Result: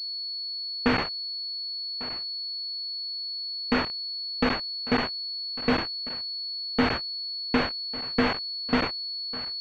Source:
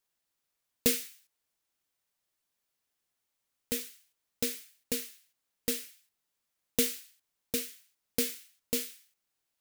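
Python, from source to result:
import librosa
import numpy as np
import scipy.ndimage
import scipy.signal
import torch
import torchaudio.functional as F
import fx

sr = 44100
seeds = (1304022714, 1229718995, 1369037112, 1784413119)

y = scipy.signal.sosfilt(scipy.signal.cheby1(2, 1.0, 170.0, 'highpass', fs=sr, output='sos'), x)
y = fx.peak_eq(y, sr, hz=660.0, db=-10.0, octaves=1.3)
y = fx.fuzz(y, sr, gain_db=47.0, gate_db=-43.0)
y = y + 10.0 ** (-20.0 / 20.0) * np.pad(y, (int(1149 * sr / 1000.0), 0))[:len(y)]
y = fx.buffer_crackle(y, sr, first_s=0.65, period_s=0.16, block=512, kind='zero')
y = fx.pwm(y, sr, carrier_hz=4400.0)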